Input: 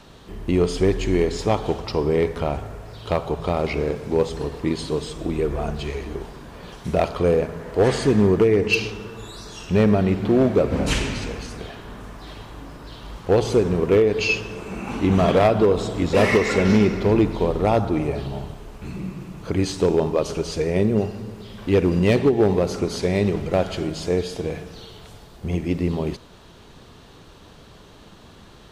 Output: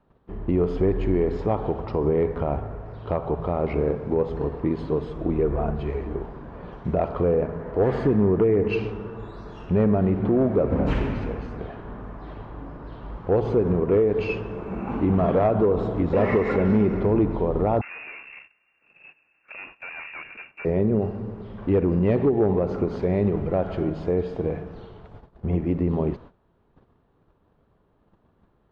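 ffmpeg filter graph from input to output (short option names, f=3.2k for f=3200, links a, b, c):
-filter_complex "[0:a]asettb=1/sr,asplit=3[a][b][c];[a]atrim=end=17.814[d];[b]atrim=start=17.81:end=20.65,asetpts=PTS-STARTPTS,afade=t=in:d=0.004:c=qsin,afade=t=out:st=2.836:d=0.004:c=qsin,aeval=exprs='(tanh(20*val(0)+0.4)-tanh(0.4))/20':c=same,lowpass=f=2.4k:t=q:w=0.5098,lowpass=f=2.4k:t=q:w=0.6013,lowpass=f=2.4k:t=q:w=0.9,lowpass=f=2.4k:t=q:w=2.563,afreqshift=-2800[e];[c]atrim=start=20.646[f];[d][e]acrossfade=d=0.004:c1=hsin:c2=qsin[g];[g][f]acrossfade=d=0.004:c1=qsin:c2=hsin,lowpass=1.3k,alimiter=limit=-14dB:level=0:latency=1:release=73,agate=range=-18dB:threshold=-43dB:ratio=16:detection=peak,volume=1dB"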